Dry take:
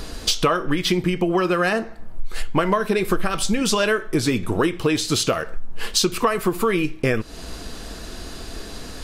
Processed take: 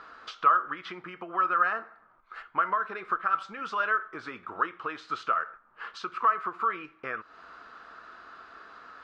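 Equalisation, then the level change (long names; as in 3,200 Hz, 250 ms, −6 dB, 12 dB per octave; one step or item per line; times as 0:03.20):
resonant band-pass 1,300 Hz, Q 5.9
high-frequency loss of the air 110 metres
+4.5 dB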